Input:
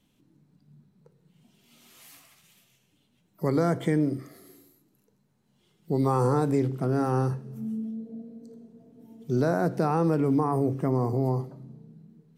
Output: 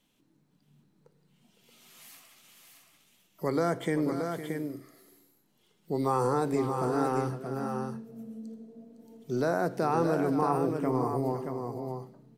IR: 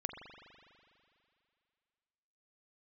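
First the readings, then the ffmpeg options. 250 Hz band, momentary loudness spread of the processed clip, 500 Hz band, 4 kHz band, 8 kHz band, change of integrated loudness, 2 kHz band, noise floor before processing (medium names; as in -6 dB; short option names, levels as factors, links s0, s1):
-4.0 dB, 15 LU, -1.5 dB, +1.0 dB, +1.0 dB, -3.5 dB, +1.0 dB, -69 dBFS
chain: -af "equalizer=f=89:w=0.36:g=-10,aecho=1:1:509|626:0.266|0.501"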